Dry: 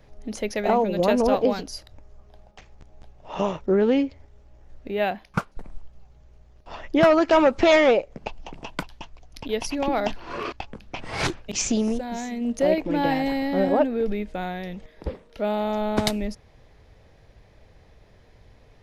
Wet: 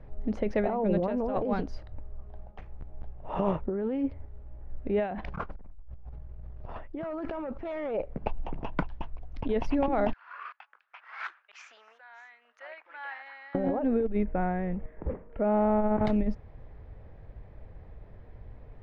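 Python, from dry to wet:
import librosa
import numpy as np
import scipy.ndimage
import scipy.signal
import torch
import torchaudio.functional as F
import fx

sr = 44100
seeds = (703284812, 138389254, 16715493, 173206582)

y = fx.env_flatten(x, sr, amount_pct=100, at=(5.04, 7.83), fade=0.02)
y = fx.ladder_highpass(y, sr, hz=1200.0, resonance_pct=50, at=(10.13, 13.55))
y = fx.lowpass(y, sr, hz=2400.0, slope=24, at=(14.23, 16.05))
y = scipy.signal.sosfilt(scipy.signal.butter(2, 1600.0, 'lowpass', fs=sr, output='sos'), y)
y = fx.low_shelf(y, sr, hz=130.0, db=8.0)
y = fx.over_compress(y, sr, threshold_db=-24.0, ratio=-1.0)
y = y * 10.0 ** (-7.5 / 20.0)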